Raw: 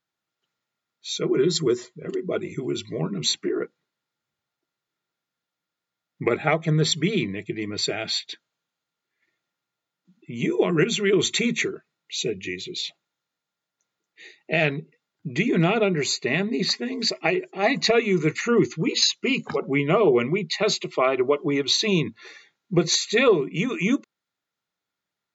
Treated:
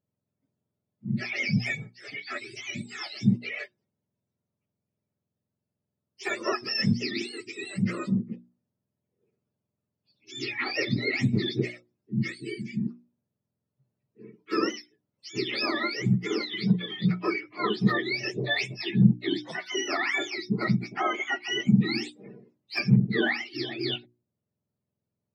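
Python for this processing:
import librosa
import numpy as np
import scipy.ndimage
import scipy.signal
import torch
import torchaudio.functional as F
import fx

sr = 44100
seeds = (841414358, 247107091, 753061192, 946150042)

y = fx.octave_mirror(x, sr, pivot_hz=910.0)
y = fx.hum_notches(y, sr, base_hz=60, count=6)
y = F.gain(torch.from_numpy(y), -4.0).numpy()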